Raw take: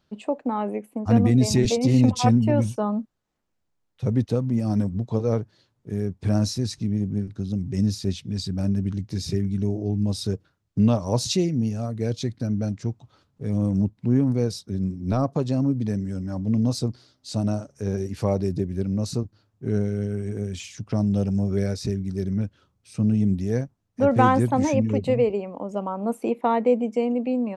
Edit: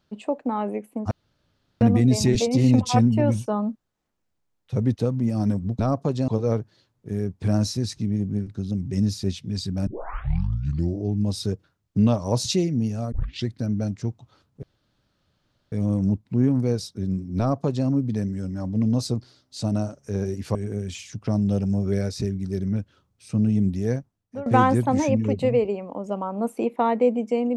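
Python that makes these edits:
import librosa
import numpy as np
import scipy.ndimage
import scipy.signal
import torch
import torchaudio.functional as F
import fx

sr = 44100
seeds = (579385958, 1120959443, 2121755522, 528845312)

y = fx.edit(x, sr, fx.insert_room_tone(at_s=1.11, length_s=0.7),
    fx.tape_start(start_s=8.68, length_s=1.16),
    fx.tape_start(start_s=11.93, length_s=0.34),
    fx.insert_room_tone(at_s=13.44, length_s=1.09),
    fx.duplicate(start_s=15.1, length_s=0.49, to_s=5.09),
    fx.cut(start_s=18.27, length_s=1.93),
    fx.fade_out_to(start_s=23.62, length_s=0.49, floor_db=-20.0), tone=tone)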